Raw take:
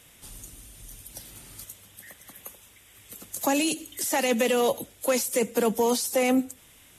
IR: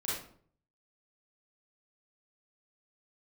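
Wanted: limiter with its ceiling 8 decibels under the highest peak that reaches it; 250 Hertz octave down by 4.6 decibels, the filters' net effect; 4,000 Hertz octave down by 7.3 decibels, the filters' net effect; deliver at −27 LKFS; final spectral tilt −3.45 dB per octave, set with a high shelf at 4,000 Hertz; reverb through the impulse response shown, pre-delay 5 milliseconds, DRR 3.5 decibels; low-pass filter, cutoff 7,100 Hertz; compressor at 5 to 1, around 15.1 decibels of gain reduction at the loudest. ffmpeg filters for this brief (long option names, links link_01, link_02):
-filter_complex "[0:a]lowpass=7100,equalizer=frequency=250:width_type=o:gain=-5,highshelf=frequency=4000:gain=-3.5,equalizer=frequency=4000:width_type=o:gain=-8,acompressor=threshold=-39dB:ratio=5,alimiter=level_in=10.5dB:limit=-24dB:level=0:latency=1,volume=-10.5dB,asplit=2[link_01][link_02];[1:a]atrim=start_sample=2205,adelay=5[link_03];[link_02][link_03]afir=irnorm=-1:irlink=0,volume=-7.5dB[link_04];[link_01][link_04]amix=inputs=2:normalize=0,volume=18dB"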